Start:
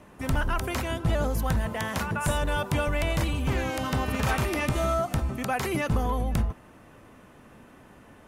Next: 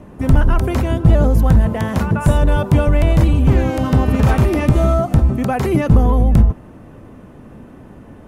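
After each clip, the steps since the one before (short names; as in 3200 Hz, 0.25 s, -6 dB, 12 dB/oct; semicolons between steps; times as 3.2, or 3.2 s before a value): tilt shelf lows +7.5 dB, about 750 Hz; gain +8 dB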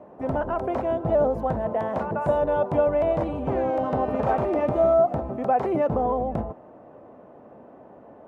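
band-pass 660 Hz, Q 2.1; gain +2 dB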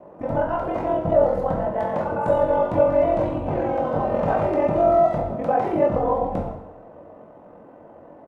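ring modulator 22 Hz; speakerphone echo 0.12 s, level -16 dB; two-slope reverb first 0.72 s, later 3 s, from -26 dB, DRR -1 dB; gain +1.5 dB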